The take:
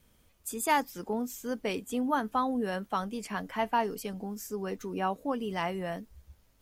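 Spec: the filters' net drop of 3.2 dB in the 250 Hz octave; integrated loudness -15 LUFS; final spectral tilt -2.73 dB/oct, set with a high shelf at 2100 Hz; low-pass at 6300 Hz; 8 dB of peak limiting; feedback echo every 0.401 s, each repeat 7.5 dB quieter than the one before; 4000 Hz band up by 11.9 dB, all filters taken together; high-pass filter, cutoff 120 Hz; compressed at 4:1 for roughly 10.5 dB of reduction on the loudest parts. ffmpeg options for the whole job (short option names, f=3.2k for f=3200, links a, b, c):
-af "highpass=120,lowpass=6.3k,equalizer=f=250:t=o:g=-3.5,highshelf=f=2.1k:g=9,equalizer=f=4k:t=o:g=8.5,acompressor=threshold=-30dB:ratio=4,alimiter=level_in=2dB:limit=-24dB:level=0:latency=1,volume=-2dB,aecho=1:1:401|802|1203|1604|2005:0.422|0.177|0.0744|0.0312|0.0131,volume=21.5dB"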